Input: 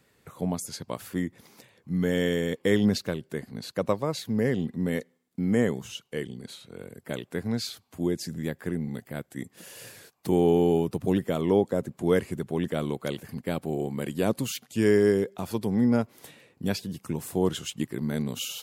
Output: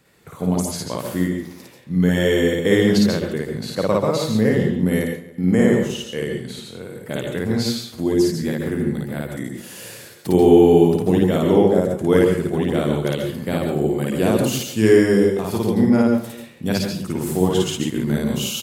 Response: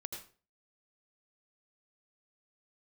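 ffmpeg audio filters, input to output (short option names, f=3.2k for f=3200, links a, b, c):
-filter_complex "[0:a]asettb=1/sr,asplit=3[a][b][c];[a]atrim=end=4.824[d];[b]atrim=start=4.82:end=5.46,asetpts=PTS-STARTPTS,afade=t=in:d=0.004:c=qsin,afade=t=out:st=0.636:d=0.004:c=qsin,equalizer=f=11k:w=6.5:g=12[e];[c]atrim=start=5.456[f];[d][e]acrossfade=d=0.004:c1=hsin:c2=qsin[g];[g][f]acrossfade=d=0.004:c1=qsin:c2=hsin,asplit=2[h][i];[i]adelay=274.1,volume=-20dB,highshelf=f=4k:g=-6.17[j];[h][j]amix=inputs=2:normalize=0,asplit=2[k][l];[1:a]atrim=start_sample=2205,adelay=55[m];[l][m]afir=irnorm=-1:irlink=0,volume=4dB[n];[k][n]amix=inputs=2:normalize=0,volume=4.5dB"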